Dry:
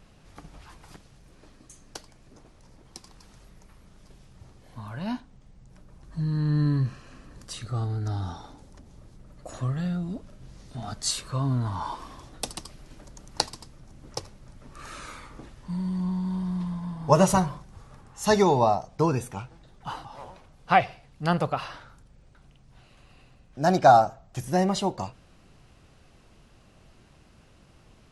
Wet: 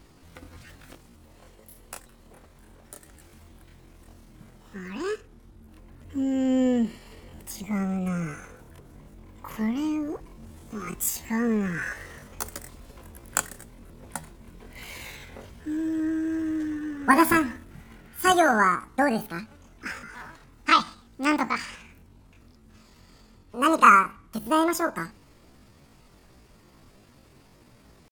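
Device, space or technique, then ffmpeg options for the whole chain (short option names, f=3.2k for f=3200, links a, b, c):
chipmunk voice: -af "asetrate=76340,aresample=44100,atempo=0.577676,volume=1dB"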